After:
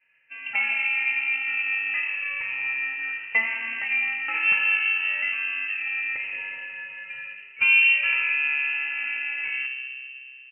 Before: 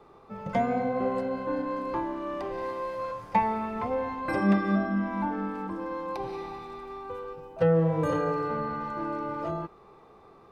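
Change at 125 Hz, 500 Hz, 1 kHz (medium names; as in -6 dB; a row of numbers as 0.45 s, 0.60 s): under -30 dB, under -20 dB, -11.5 dB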